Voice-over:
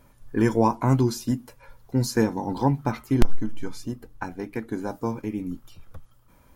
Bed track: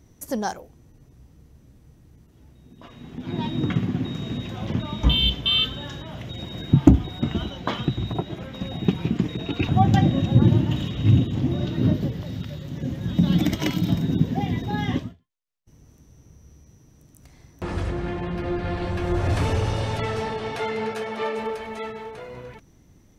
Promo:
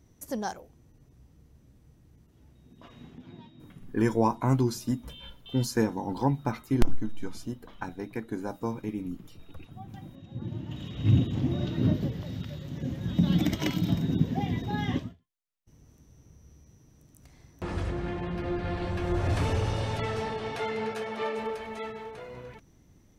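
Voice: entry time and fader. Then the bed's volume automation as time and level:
3.60 s, -4.0 dB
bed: 3.03 s -6 dB
3.53 s -26.5 dB
10.17 s -26.5 dB
11.14 s -4.5 dB

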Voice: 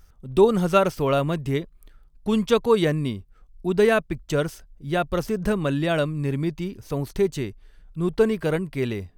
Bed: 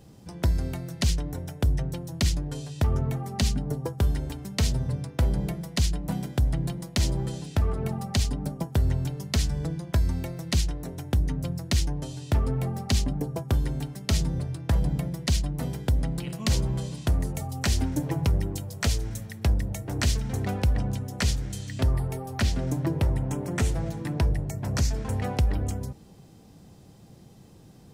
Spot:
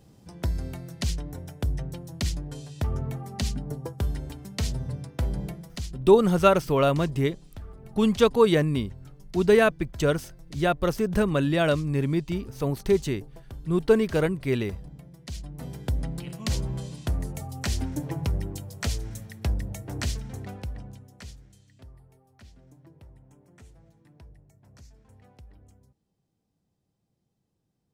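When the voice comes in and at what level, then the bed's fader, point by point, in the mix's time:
5.70 s, 0.0 dB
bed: 5.44 s -4 dB
6.22 s -17.5 dB
15.07 s -17.5 dB
15.85 s -3.5 dB
19.95 s -3.5 dB
21.98 s -26.5 dB

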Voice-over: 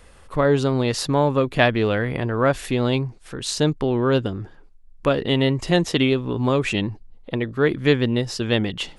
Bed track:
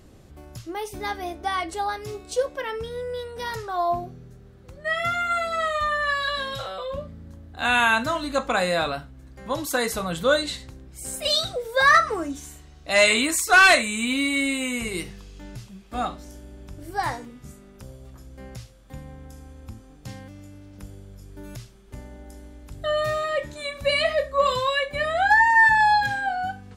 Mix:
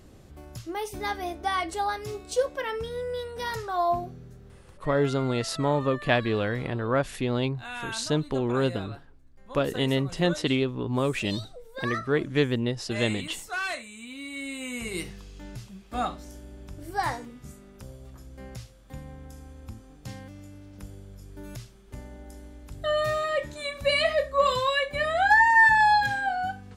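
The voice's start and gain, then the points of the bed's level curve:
4.50 s, -6.0 dB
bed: 4.54 s -1 dB
4.87 s -17 dB
14.13 s -17 dB
15.05 s -1.5 dB

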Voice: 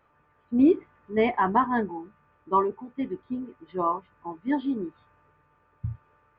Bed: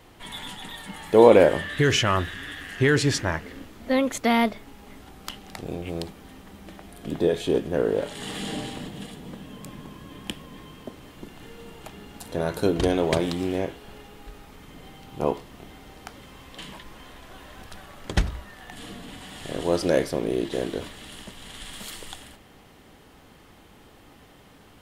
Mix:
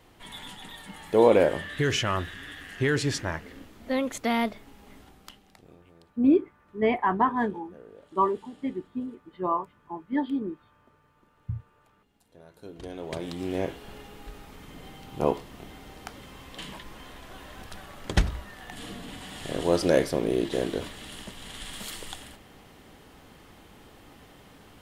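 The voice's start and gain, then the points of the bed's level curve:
5.65 s, -1.0 dB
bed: 5.00 s -5 dB
5.94 s -25.5 dB
12.50 s -25.5 dB
13.69 s 0 dB

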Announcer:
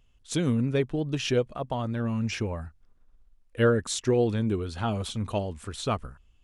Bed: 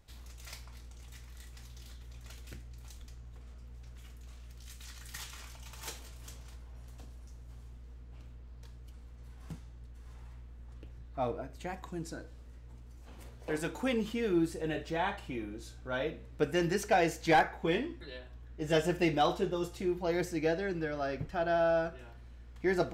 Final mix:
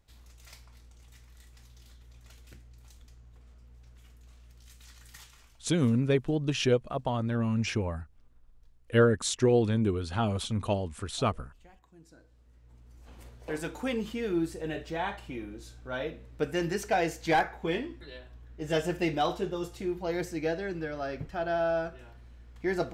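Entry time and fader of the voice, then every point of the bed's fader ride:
5.35 s, 0.0 dB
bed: 5.06 s -4.5 dB
5.88 s -18 dB
11.88 s -18 dB
13.06 s 0 dB

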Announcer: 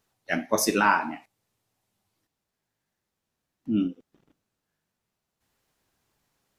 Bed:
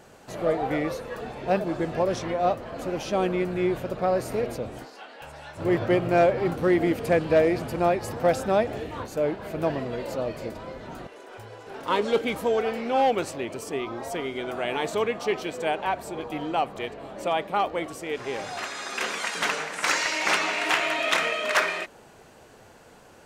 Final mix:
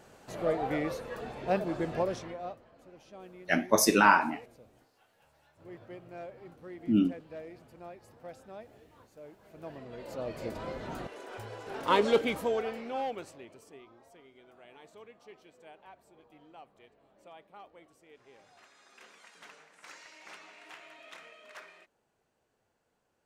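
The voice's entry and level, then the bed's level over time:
3.20 s, 0.0 dB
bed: 2.00 s -5 dB
2.76 s -24.5 dB
9.33 s -24.5 dB
10.63 s -0.5 dB
12.06 s -0.5 dB
14.13 s -26.5 dB

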